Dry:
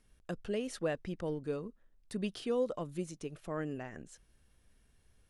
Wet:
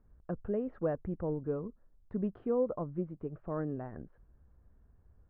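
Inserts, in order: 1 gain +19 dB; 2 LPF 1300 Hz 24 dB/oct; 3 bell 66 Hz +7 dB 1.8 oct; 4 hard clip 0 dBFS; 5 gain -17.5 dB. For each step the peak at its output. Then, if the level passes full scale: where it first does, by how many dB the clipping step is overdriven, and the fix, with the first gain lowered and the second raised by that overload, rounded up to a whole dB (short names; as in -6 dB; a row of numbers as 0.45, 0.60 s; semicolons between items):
-3.5, -3.5, -3.0, -3.0, -20.5 dBFS; no overload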